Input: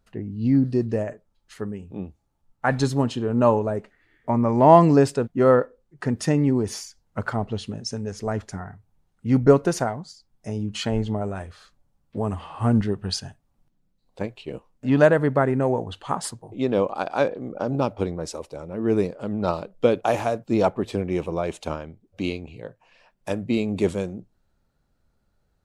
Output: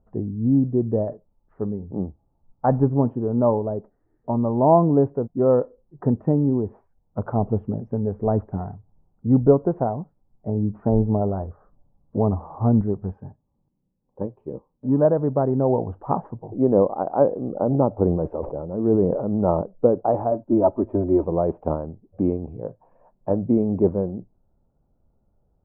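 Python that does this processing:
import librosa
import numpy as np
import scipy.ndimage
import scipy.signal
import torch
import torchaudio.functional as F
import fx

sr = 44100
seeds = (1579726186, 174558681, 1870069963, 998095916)

y = fx.lowpass(x, sr, hz=1700.0, slope=24, at=(10.54, 12.62))
y = fx.notch_comb(y, sr, f0_hz=690.0, at=(13.12, 15.05))
y = fx.sustainer(y, sr, db_per_s=53.0, at=(18.04, 19.61), fade=0.02)
y = fx.comb(y, sr, ms=3.2, depth=0.89, at=(20.31, 21.24))
y = scipy.signal.sosfilt(scipy.signal.cheby2(4, 70, 4000.0, 'lowpass', fs=sr, output='sos'), y)
y = fx.rider(y, sr, range_db=4, speed_s=0.5)
y = y * librosa.db_to_amplitude(2.0)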